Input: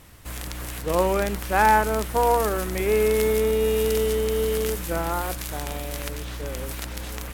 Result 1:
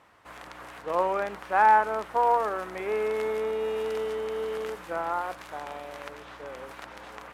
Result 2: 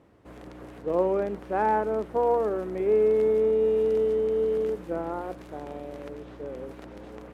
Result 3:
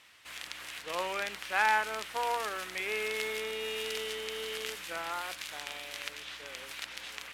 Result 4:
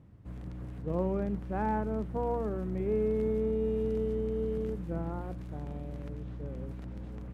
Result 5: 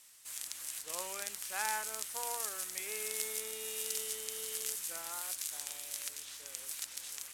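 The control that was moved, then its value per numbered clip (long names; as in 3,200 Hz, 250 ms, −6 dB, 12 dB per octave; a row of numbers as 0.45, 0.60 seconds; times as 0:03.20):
resonant band-pass, frequency: 1,000, 390, 2,800, 150, 7,900 Hertz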